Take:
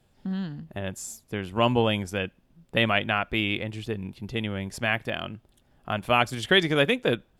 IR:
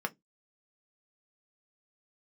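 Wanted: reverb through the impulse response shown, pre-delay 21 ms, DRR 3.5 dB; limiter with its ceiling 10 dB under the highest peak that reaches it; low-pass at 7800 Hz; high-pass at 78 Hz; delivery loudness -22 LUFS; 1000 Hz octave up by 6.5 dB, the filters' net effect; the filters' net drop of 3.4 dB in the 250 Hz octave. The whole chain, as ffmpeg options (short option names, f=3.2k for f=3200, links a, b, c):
-filter_complex "[0:a]highpass=78,lowpass=7.8k,equalizer=f=250:t=o:g=-5,equalizer=f=1k:t=o:g=9,alimiter=limit=-12.5dB:level=0:latency=1,asplit=2[a][b];[1:a]atrim=start_sample=2205,adelay=21[c];[b][c]afir=irnorm=-1:irlink=0,volume=-8dB[d];[a][d]amix=inputs=2:normalize=0,volume=5dB"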